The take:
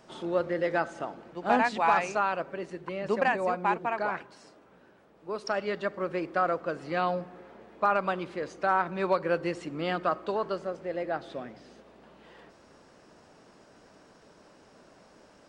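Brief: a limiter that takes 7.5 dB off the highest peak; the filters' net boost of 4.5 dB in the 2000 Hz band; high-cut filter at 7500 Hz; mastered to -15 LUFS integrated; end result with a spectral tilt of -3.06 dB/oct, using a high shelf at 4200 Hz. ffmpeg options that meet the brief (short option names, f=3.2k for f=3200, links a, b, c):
-af "lowpass=7.5k,equalizer=f=2k:t=o:g=5.5,highshelf=f=4.2k:g=3.5,volume=15.5dB,alimiter=limit=-1.5dB:level=0:latency=1"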